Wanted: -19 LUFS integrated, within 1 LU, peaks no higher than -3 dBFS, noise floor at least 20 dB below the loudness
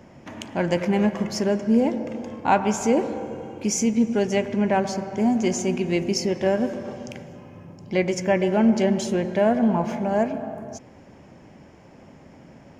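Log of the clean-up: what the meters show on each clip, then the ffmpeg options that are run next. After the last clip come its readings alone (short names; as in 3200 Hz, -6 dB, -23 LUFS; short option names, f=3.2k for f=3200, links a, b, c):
loudness -23.0 LUFS; peak -7.5 dBFS; loudness target -19.0 LUFS
-> -af "volume=4dB"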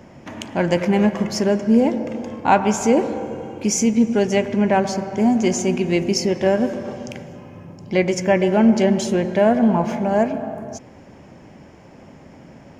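loudness -19.0 LUFS; peak -3.5 dBFS; noise floor -45 dBFS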